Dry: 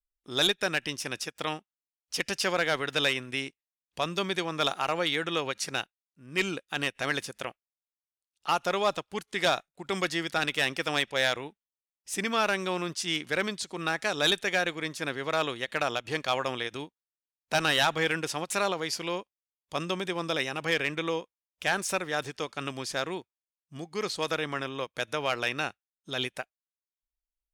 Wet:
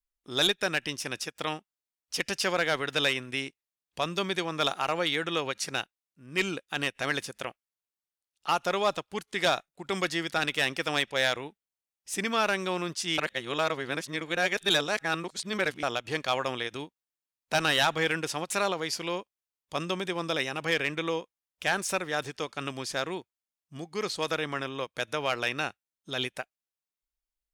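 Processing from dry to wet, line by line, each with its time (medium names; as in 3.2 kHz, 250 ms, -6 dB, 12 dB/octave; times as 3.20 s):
13.18–15.83 s: reverse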